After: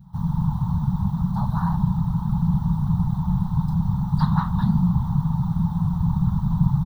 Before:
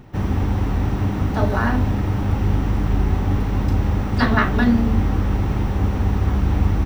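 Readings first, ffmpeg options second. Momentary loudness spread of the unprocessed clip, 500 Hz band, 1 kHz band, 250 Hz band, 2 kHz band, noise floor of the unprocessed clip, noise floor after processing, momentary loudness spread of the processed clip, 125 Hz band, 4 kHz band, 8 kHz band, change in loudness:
4 LU, below −25 dB, −5.0 dB, −1.0 dB, below −15 dB, −23 dBFS, −29 dBFS, 3 LU, −0.5 dB, below −10 dB, can't be measured, −2.5 dB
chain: -af "adynamicequalizer=threshold=0.0158:dfrequency=980:dqfactor=2.6:tfrequency=980:tqfactor=2.6:attack=5:release=100:ratio=0.375:range=2:mode=boostabove:tftype=bell,afftfilt=real='hypot(re,im)*cos(2*PI*random(0))':imag='hypot(re,im)*sin(2*PI*random(1))':win_size=512:overlap=0.75,firequalizer=gain_entry='entry(100,0);entry(170,13);entry(290,-26);entry(500,-29);entry(890,4);entry(1700,-17);entry(2400,-27);entry(3700,-2);entry(5500,-9);entry(10000,0)':delay=0.05:min_phase=1"

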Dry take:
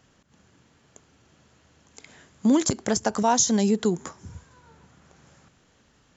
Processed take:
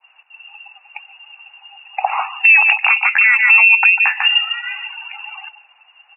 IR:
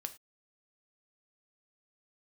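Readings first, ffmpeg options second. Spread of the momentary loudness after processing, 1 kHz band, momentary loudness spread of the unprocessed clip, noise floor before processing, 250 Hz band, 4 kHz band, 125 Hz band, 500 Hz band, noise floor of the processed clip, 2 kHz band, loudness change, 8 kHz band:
21 LU, +8.0 dB, 8 LU, −62 dBFS, below −40 dB, +15.5 dB, below −40 dB, below −10 dB, −54 dBFS, +31.0 dB, +12.5 dB, can't be measured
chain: -filter_complex "[0:a]flanger=delay=1:depth=3.4:regen=89:speed=0.85:shape=sinusoidal,asplit=2[link_01][link_02];[link_02]aecho=0:1:147:0.299[link_03];[link_01][link_03]amix=inputs=2:normalize=0,lowpass=frequency=2500:width_type=q:width=0.5098,lowpass=frequency=2500:width_type=q:width=0.6013,lowpass=frequency=2500:width_type=q:width=0.9,lowpass=frequency=2500:width_type=q:width=2.563,afreqshift=-2900,acompressor=threshold=-41dB:ratio=6,highpass=frequency=810:width_type=q:width=6.2,adynamicequalizer=threshold=0.00178:dfrequency=1800:dqfactor=0.73:tfrequency=1800:tqfactor=0.73:attack=5:release=100:ratio=0.375:range=2:mode=boostabove:tftype=bell,afftdn=noise_reduction=22:noise_floor=-51,alimiter=level_in=30.5dB:limit=-1dB:release=50:level=0:latency=1,volume=-1dB"

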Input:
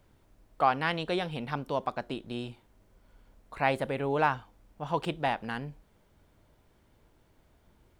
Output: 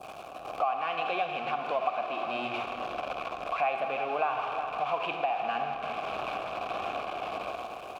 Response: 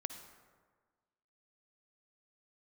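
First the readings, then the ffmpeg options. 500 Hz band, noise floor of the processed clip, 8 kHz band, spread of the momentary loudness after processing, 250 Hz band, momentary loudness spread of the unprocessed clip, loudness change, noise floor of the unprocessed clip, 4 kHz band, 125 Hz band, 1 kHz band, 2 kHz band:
+1.5 dB, −43 dBFS, can't be measured, 6 LU, −7.5 dB, 12 LU, −0.5 dB, −66 dBFS, +1.0 dB, −13.5 dB, +3.0 dB, 0.0 dB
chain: -filter_complex "[0:a]aeval=exprs='val(0)+0.5*0.0422*sgn(val(0))':channel_layout=same,asplit=3[link_01][link_02][link_03];[link_01]bandpass=frequency=730:width_type=q:width=8,volume=0dB[link_04];[link_02]bandpass=frequency=1090:width_type=q:width=8,volume=-6dB[link_05];[link_03]bandpass=frequency=2440:width_type=q:width=8,volume=-9dB[link_06];[link_04][link_05][link_06]amix=inputs=3:normalize=0,highshelf=frequency=6900:gain=11[link_07];[1:a]atrim=start_sample=2205[link_08];[link_07][link_08]afir=irnorm=-1:irlink=0,acrossover=split=4800[link_09][link_10];[link_09]dynaudnorm=framelen=120:gausssize=11:maxgain=14dB[link_11];[link_11][link_10]amix=inputs=2:normalize=0,tremolo=f=1.6:d=0.36,asplit=2[link_12][link_13];[link_13]aecho=0:1:358:0.158[link_14];[link_12][link_14]amix=inputs=2:normalize=0,adynamicequalizer=threshold=0.00891:dfrequency=2100:dqfactor=0.84:tfrequency=2100:tqfactor=0.84:attack=5:release=100:ratio=0.375:range=4:mode=boostabove:tftype=bell,acompressor=threshold=-42dB:ratio=3,volume=9dB"

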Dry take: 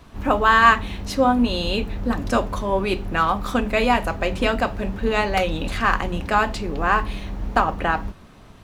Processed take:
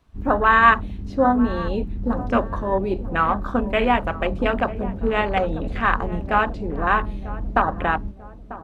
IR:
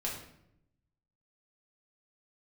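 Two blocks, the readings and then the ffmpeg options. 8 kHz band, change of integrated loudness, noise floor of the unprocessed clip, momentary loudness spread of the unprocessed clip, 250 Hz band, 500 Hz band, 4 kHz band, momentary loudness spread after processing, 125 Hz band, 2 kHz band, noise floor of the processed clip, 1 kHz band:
below −15 dB, −0.5 dB, −45 dBFS, 9 LU, 0.0 dB, 0.0 dB, −7.5 dB, 9 LU, 0.0 dB, −0.5 dB, −40 dBFS, 0.0 dB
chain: -filter_complex "[0:a]acrossover=split=6000[link_01][link_02];[link_02]acompressor=threshold=-50dB:ratio=4:attack=1:release=60[link_03];[link_01][link_03]amix=inputs=2:normalize=0,afwtdn=0.0501,asplit=2[link_04][link_05];[link_05]adelay=943,lowpass=frequency=880:poles=1,volume=-14dB,asplit=2[link_06][link_07];[link_07]adelay=943,lowpass=frequency=880:poles=1,volume=0.52,asplit=2[link_08][link_09];[link_09]adelay=943,lowpass=frequency=880:poles=1,volume=0.52,asplit=2[link_10][link_11];[link_11]adelay=943,lowpass=frequency=880:poles=1,volume=0.52,asplit=2[link_12][link_13];[link_13]adelay=943,lowpass=frequency=880:poles=1,volume=0.52[link_14];[link_06][link_08][link_10][link_12][link_14]amix=inputs=5:normalize=0[link_15];[link_04][link_15]amix=inputs=2:normalize=0"

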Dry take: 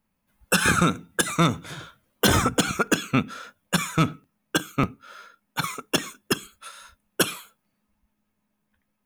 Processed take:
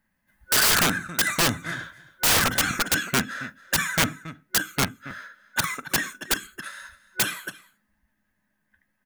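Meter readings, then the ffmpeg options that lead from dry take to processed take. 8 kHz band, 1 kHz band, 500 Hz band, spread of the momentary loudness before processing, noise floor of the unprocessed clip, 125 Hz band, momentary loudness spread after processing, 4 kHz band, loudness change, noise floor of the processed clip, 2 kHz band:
+4.0 dB, −1.5 dB, −4.5 dB, 19 LU, −76 dBFS, −6.0 dB, 20 LU, +3.0 dB, +1.0 dB, −75 dBFS, +2.5 dB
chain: -af "superequalizer=7b=0.562:11b=3.98,aecho=1:1:45|274:0.1|0.126,aeval=exprs='(mod(5.01*val(0)+1,2)-1)/5.01':channel_layout=same"

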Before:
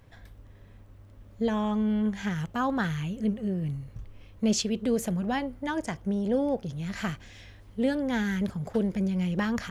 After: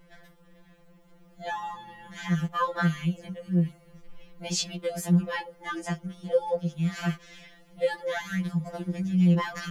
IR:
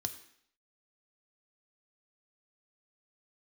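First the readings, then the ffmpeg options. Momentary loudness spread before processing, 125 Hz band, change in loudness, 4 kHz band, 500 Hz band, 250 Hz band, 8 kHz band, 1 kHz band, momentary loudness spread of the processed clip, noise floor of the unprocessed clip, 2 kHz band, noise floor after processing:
8 LU, +4.5 dB, +0.5 dB, +1.0 dB, 0.0 dB, −2.0 dB, +0.5 dB, +1.5 dB, 12 LU, −52 dBFS, +1.0 dB, −57 dBFS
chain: -af "aeval=exprs='val(0)+0.001*(sin(2*PI*60*n/s)+sin(2*PI*2*60*n/s)/2+sin(2*PI*3*60*n/s)/3+sin(2*PI*4*60*n/s)/4+sin(2*PI*5*60*n/s)/5)':channel_layout=same,afftfilt=real='re*2.83*eq(mod(b,8),0)':imag='im*2.83*eq(mod(b,8),0)':win_size=2048:overlap=0.75,volume=3.5dB"

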